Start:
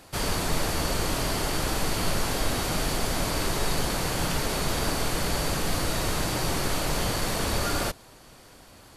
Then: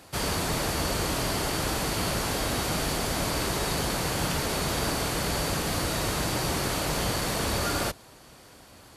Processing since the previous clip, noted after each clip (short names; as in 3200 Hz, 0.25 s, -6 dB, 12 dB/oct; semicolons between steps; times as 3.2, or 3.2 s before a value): HPF 46 Hz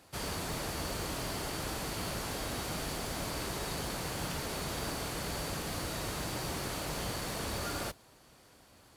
modulation noise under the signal 23 dB; gain -9 dB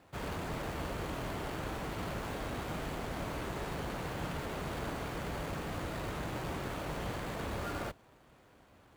median filter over 9 samples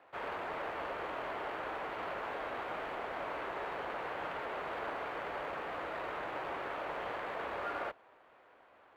three-band isolator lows -23 dB, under 410 Hz, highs -23 dB, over 2900 Hz; gain +3.5 dB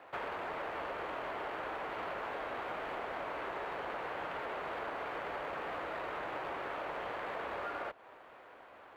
compressor, threshold -44 dBFS, peak gain reduction 9.5 dB; gain +7 dB